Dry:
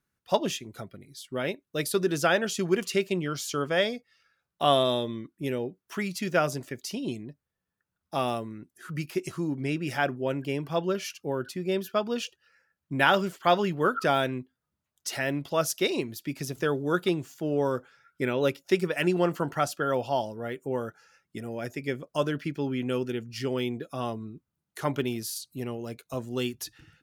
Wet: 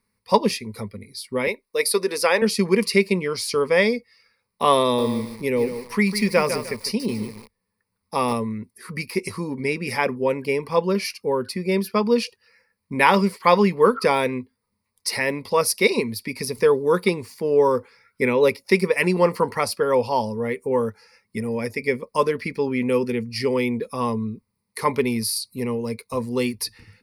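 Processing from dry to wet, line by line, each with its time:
0:01.47–0:02.42: high-pass filter 390 Hz
0:04.83–0:08.33: feedback echo at a low word length 151 ms, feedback 35%, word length 7 bits, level −8.5 dB
whole clip: EQ curve with evenly spaced ripples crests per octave 0.9, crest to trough 15 dB; level +5.5 dB

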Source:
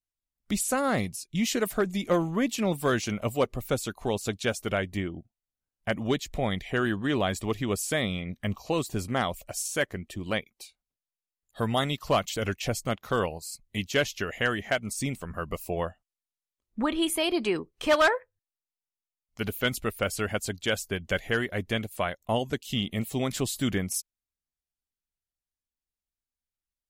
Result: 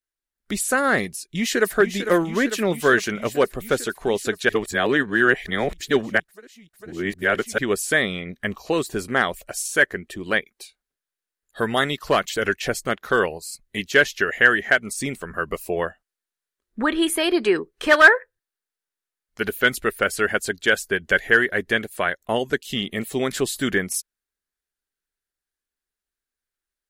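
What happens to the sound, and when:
0:01.19–0:01.73: delay throw 450 ms, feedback 80%, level −9.5 dB
0:04.49–0:07.58: reverse
whole clip: dynamic equaliser 1,800 Hz, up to +4 dB, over −46 dBFS, Q 4.8; automatic gain control gain up to 3.5 dB; graphic EQ with 15 bands 100 Hz −8 dB, 400 Hz +8 dB, 1,600 Hz +11 dB, 4,000 Hz +3 dB, 10,000 Hz +4 dB; level −2 dB

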